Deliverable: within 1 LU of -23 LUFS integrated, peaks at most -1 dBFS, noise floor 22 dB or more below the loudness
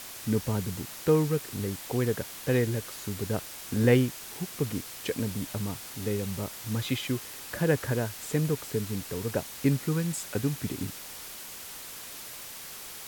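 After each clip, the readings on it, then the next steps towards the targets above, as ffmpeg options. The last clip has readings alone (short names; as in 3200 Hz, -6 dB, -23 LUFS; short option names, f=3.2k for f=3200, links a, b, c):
noise floor -43 dBFS; noise floor target -53 dBFS; loudness -30.5 LUFS; peak -10.0 dBFS; loudness target -23.0 LUFS
-> -af "afftdn=nr=10:nf=-43"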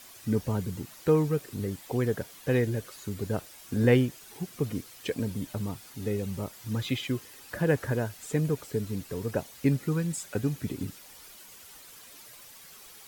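noise floor -50 dBFS; noise floor target -53 dBFS
-> -af "afftdn=nr=6:nf=-50"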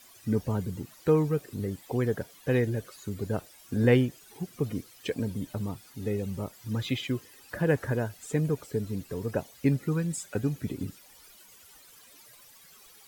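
noise floor -55 dBFS; loudness -30.5 LUFS; peak -10.5 dBFS; loudness target -23.0 LUFS
-> -af "volume=7.5dB"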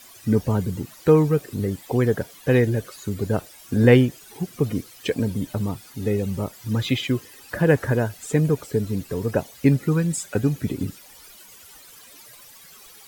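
loudness -23.0 LUFS; peak -3.0 dBFS; noise floor -47 dBFS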